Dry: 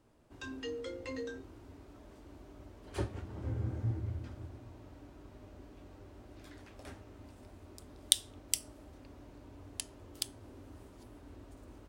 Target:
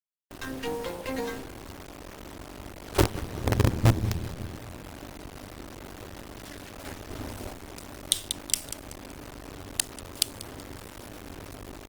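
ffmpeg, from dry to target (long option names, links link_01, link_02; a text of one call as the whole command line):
ffmpeg -i in.wav -filter_complex "[0:a]asettb=1/sr,asplit=3[link_01][link_02][link_03];[link_01]atrim=end=7.104[link_04];[link_02]atrim=start=7.1:end=7.53,asetpts=PTS-STARTPTS,afade=type=in:duration=0.004:curve=qsin,afade=type=out:start_time=0.426:duration=0.004:curve=qsin,acontrast=81[link_05];[link_03]atrim=start=7.526[link_06];[link_04][link_05]acrossfade=duration=0.004:curve1=hsin:curve2=qsin[link_07];[link_07][link_06]acrossfade=duration=0.004:curve1=qsin:curve2=hsin,acrusher=bits=6:dc=4:mix=0:aa=0.000001,aecho=1:1:189|378|567:0.112|0.0404|0.0145,alimiter=level_in=14dB:limit=-1dB:release=50:level=0:latency=1,volume=-1dB" -ar 48000 -c:a libopus -b:a 24k out.opus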